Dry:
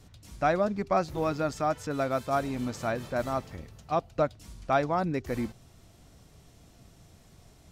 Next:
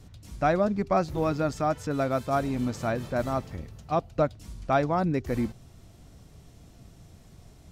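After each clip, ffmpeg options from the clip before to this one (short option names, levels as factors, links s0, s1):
-af "lowshelf=f=380:g=5.5"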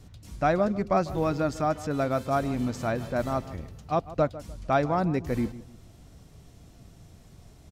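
-filter_complex "[0:a]asplit=2[s0][s1];[s1]adelay=150,lowpass=f=2000:p=1,volume=0.158,asplit=2[s2][s3];[s3]adelay=150,lowpass=f=2000:p=1,volume=0.32,asplit=2[s4][s5];[s5]adelay=150,lowpass=f=2000:p=1,volume=0.32[s6];[s0][s2][s4][s6]amix=inputs=4:normalize=0"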